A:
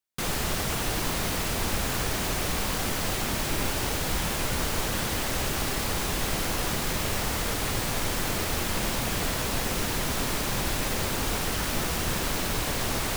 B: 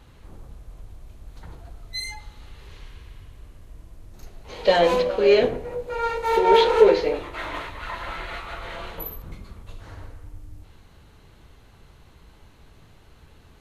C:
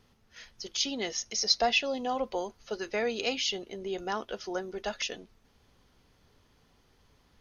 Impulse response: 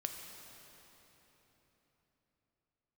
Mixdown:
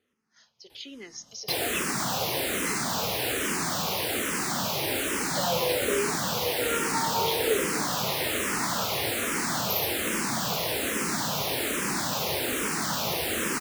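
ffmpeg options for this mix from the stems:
-filter_complex "[0:a]adelay=1300,volume=2dB,asplit=2[a][b];[b]volume=-10dB[c];[1:a]highshelf=f=4.6k:g=11,acompressor=threshold=-23dB:ratio=6,adelay=700,volume=-1dB[d];[2:a]volume=-9dB,asplit=3[e][f][g];[f]volume=-8.5dB[h];[g]apad=whole_len=630727[i];[d][i]sidechaincompress=threshold=-46dB:ratio=8:attack=16:release=241[j];[3:a]atrim=start_sample=2205[k];[c][h]amix=inputs=2:normalize=0[l];[l][k]afir=irnorm=-1:irlink=0[m];[a][j][e][m]amix=inputs=4:normalize=0,highpass=170,asplit=2[n][o];[o]afreqshift=-1.2[p];[n][p]amix=inputs=2:normalize=1"

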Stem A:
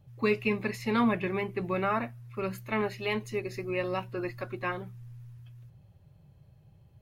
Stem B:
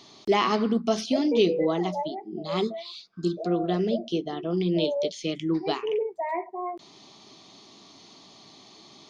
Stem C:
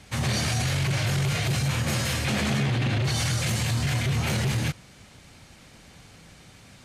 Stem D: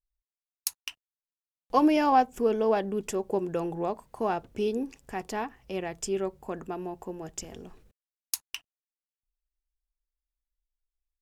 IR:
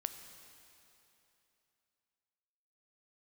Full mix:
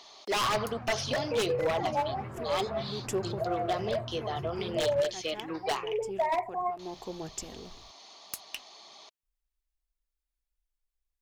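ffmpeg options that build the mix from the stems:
-filter_complex "[0:a]acompressor=threshold=-32dB:ratio=6,adelay=850,volume=-13dB[a];[1:a]highpass=200,lowshelf=f=430:t=q:w=1.5:g=-11.5,volume=-0.5dB,asplit=2[b][c];[2:a]lowpass=f=1.1k:t=q:w=2.2,adelay=300,volume=-16.5dB[d];[3:a]acompressor=threshold=-26dB:ratio=6,volume=0dB[e];[c]apad=whole_len=494436[f];[e][f]sidechaincompress=threshold=-52dB:ratio=3:attack=44:release=144[g];[a][b][d][g]amix=inputs=4:normalize=0,aeval=exprs='0.075*(abs(mod(val(0)/0.075+3,4)-2)-1)':c=same,aphaser=in_gain=1:out_gain=1:delay=4.1:decay=0.25:speed=1.8:type=triangular"

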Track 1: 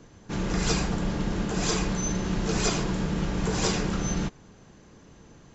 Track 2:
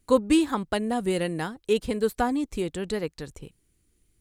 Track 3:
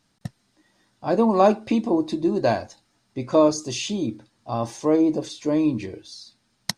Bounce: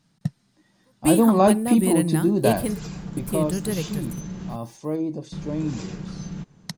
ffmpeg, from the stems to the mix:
-filter_complex "[0:a]acompressor=threshold=-30dB:ratio=4,adelay=2150,volume=-7dB,asplit=3[a][b][c];[a]atrim=end=4.56,asetpts=PTS-STARTPTS,afade=t=out:st=4.556:d=0.004:c=hsin[d];[b]atrim=start=4.56:end=5.32,asetpts=PTS-STARTPTS,volume=0[e];[c]atrim=start=5.32,asetpts=PTS-STARTPTS,afade=t=in:d=0.004:c=hsin[f];[d][e][f]concat=n=3:v=0:a=1[g];[1:a]aexciter=amount=6.7:drive=9.2:freq=9.4k,adelay=750,volume=-2dB[h];[2:a]volume=-1.5dB,afade=t=out:st=2.84:d=0.45:silence=0.398107,asplit=2[i][j];[j]apad=whole_len=218598[k];[h][k]sidechaingate=range=-44dB:threshold=-44dB:ratio=16:detection=peak[l];[g][l][i]amix=inputs=3:normalize=0,equalizer=f=160:t=o:w=0.8:g=12"

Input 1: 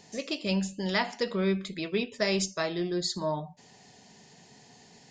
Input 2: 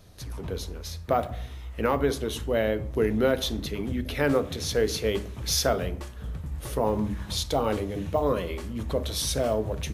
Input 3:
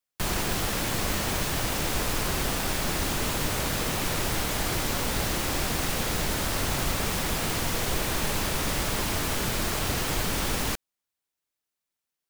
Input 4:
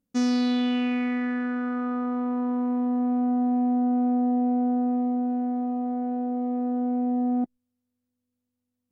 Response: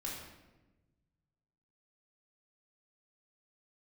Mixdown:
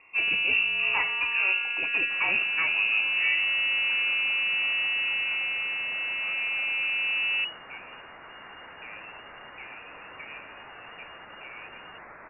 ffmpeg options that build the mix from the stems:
-filter_complex "[0:a]asoftclip=type=hard:threshold=-23.5dB,volume=1.5dB[a];[1:a]adelay=2050,volume=-20dB[b];[2:a]highpass=1.2k,flanger=delay=4.2:depth=7.9:regen=65:speed=1.7:shape=sinusoidal,adelay=1900,volume=-4.5dB[c];[3:a]aeval=exprs='(tanh(14.1*val(0)+0.75)-tanh(0.75))/14.1':c=same,volume=0.5dB[d];[a][b][c][d]amix=inputs=4:normalize=0,lowpass=f=2.5k:t=q:w=0.5098,lowpass=f=2.5k:t=q:w=0.6013,lowpass=f=2.5k:t=q:w=0.9,lowpass=f=2.5k:t=q:w=2.563,afreqshift=-2900"

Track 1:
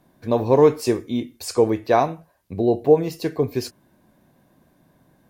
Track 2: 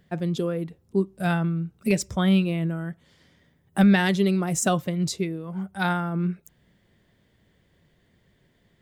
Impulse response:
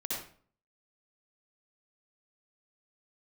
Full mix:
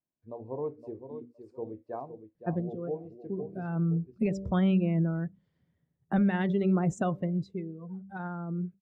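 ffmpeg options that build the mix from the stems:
-filter_complex "[0:a]bandreject=f=60:t=h:w=6,bandreject=f=120:t=h:w=6,bandreject=f=180:t=h:w=6,bandreject=f=240:t=h:w=6,bandreject=f=300:t=h:w=6,bandreject=f=360:t=h:w=6,bandreject=f=420:t=h:w=6,bandreject=f=480:t=h:w=6,bandreject=f=540:t=h:w=6,volume=-19.5dB,asplit=3[a][b][c];[b]volume=-8.5dB[d];[1:a]bandreject=f=97.1:t=h:w=4,bandreject=f=194.2:t=h:w=4,bandreject=f=291.3:t=h:w=4,bandreject=f=388.4:t=h:w=4,bandreject=f=485.5:t=h:w=4,bandreject=f=582.6:t=h:w=4,alimiter=limit=-17.5dB:level=0:latency=1:release=161,adelay=2350,afade=t=out:st=7.12:d=0.34:silence=0.421697[e];[c]apad=whole_len=492336[f];[e][f]sidechaincompress=threshold=-49dB:ratio=6:attack=36:release=408[g];[d]aecho=0:1:515|1030|1545|2060:1|0.3|0.09|0.027[h];[a][g][h]amix=inputs=3:normalize=0,lowpass=f=1.1k:p=1,afftdn=nr=17:nf=-45"

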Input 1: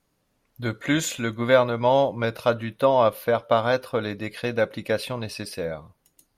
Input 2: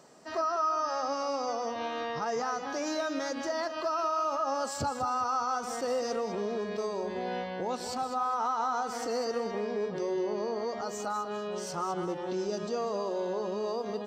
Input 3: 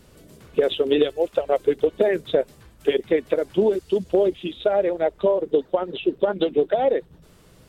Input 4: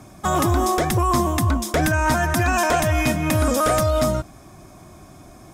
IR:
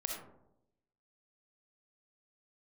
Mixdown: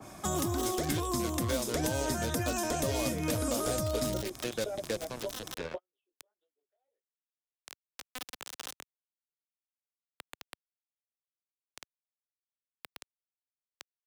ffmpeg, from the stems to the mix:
-filter_complex "[0:a]lowpass=f=3.6k:w=0.5412,lowpass=f=3.6k:w=1.3066,acrusher=bits=3:mix=0:aa=0.5,volume=-2dB,asplit=2[a][b];[1:a]afwtdn=0.0112,acrusher=bits=3:mix=0:aa=0.000001,volume=-5dB[c];[2:a]highpass=420,dynaudnorm=f=170:g=17:m=11.5dB,flanger=delay=16.5:depth=6.4:speed=1.7,volume=-10.5dB[d];[3:a]adynamicequalizer=threshold=0.0158:dfrequency=2200:dqfactor=0.7:tfrequency=2200:tqfactor=0.7:attack=5:release=100:ratio=0.375:range=2.5:mode=cutabove:tftype=highshelf,volume=0.5dB[e];[b]apad=whole_len=338930[f];[d][f]sidechaingate=range=-50dB:threshold=-36dB:ratio=16:detection=peak[g];[a][c][g][e]amix=inputs=4:normalize=0,lowshelf=f=300:g=-9.5,acrossover=split=97|440|3700[h][i][j][k];[h]acompressor=threshold=-42dB:ratio=4[l];[i]acompressor=threshold=-32dB:ratio=4[m];[j]acompressor=threshold=-43dB:ratio=4[n];[k]acompressor=threshold=-35dB:ratio=4[o];[l][m][n][o]amix=inputs=4:normalize=0"

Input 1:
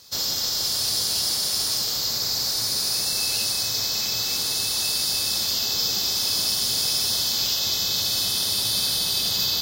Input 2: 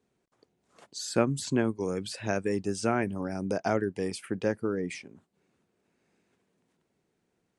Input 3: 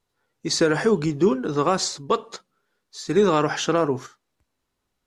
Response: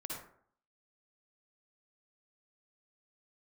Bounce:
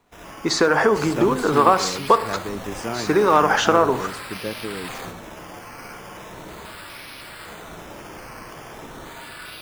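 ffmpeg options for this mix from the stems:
-filter_complex "[0:a]acrusher=samples=9:mix=1:aa=0.000001:lfo=1:lforange=5.4:lforate=0.39,volume=-13dB,asplit=2[a][b];[b]volume=-3dB[c];[1:a]volume=-2dB,asplit=2[d][e];[2:a]acompressor=threshold=-23dB:ratio=6,equalizer=f=1k:t=o:w=2.5:g=15,volume=0dB,asplit=2[f][g];[g]volume=-12dB[h];[e]apad=whole_len=424196[i];[a][i]sidechaingate=range=-12dB:threshold=-49dB:ratio=16:detection=peak[j];[3:a]atrim=start_sample=2205[k];[c][h]amix=inputs=2:normalize=0[l];[l][k]afir=irnorm=-1:irlink=0[m];[j][d][f][m]amix=inputs=4:normalize=0"

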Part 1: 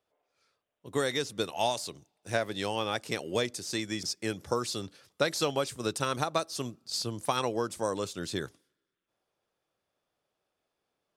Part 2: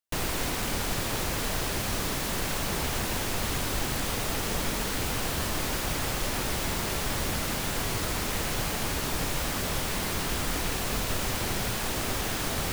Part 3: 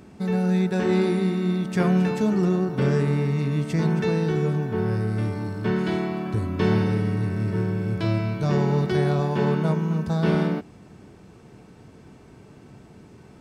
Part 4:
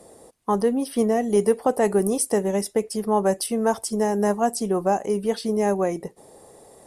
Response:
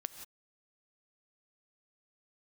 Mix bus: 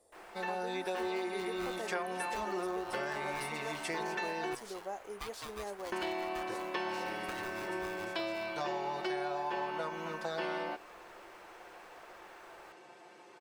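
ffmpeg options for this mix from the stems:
-filter_complex "[0:a]aeval=exprs='val(0)*sgn(sin(2*PI*610*n/s))':c=same,volume=-16.5dB[a];[1:a]acrossover=split=440 2100:gain=0.0794 1 0.1[b][c][d];[b][c][d]amix=inputs=3:normalize=0,volume=-17dB[e];[2:a]highpass=510,highshelf=f=4.7k:g=-9,aecho=1:1:5.7:0.98,adelay=150,volume=0dB,asplit=3[f][g][h];[f]atrim=end=4.55,asetpts=PTS-STARTPTS,afade=t=out:st=4.546:d=0.004:c=hsin[i];[g]atrim=start=4.55:end=5.92,asetpts=PTS-STARTPTS,volume=0[j];[h]atrim=start=5.92,asetpts=PTS-STARTPTS,afade=t=in:d=0.004:c=hsin[k];[i][j][k]concat=n=3:v=0:a=1[l];[3:a]volume=-18dB[m];[a][e][l][m]amix=inputs=4:normalize=0,equalizer=f=180:t=o:w=1.2:g=-13.5,acompressor=threshold=-33dB:ratio=6"

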